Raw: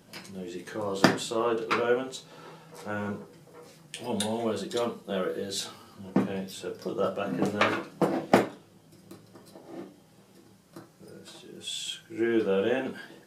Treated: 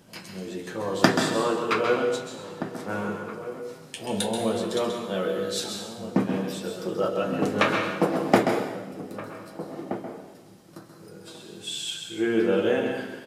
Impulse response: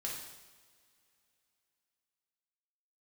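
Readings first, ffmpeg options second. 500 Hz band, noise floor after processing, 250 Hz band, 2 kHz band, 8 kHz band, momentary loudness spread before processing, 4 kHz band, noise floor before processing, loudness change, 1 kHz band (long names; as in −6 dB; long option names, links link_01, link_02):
+3.5 dB, −49 dBFS, +3.5 dB, +3.5 dB, +3.5 dB, 20 LU, +3.5 dB, −58 dBFS, +3.0 dB, +3.5 dB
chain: -filter_complex "[0:a]asplit=2[link_01][link_02];[link_02]adelay=1574,volume=-12dB,highshelf=frequency=4000:gain=-35.4[link_03];[link_01][link_03]amix=inputs=2:normalize=0,asplit=2[link_04][link_05];[1:a]atrim=start_sample=2205,adelay=131[link_06];[link_05][link_06]afir=irnorm=-1:irlink=0,volume=-4.5dB[link_07];[link_04][link_07]amix=inputs=2:normalize=0,volume=2dB"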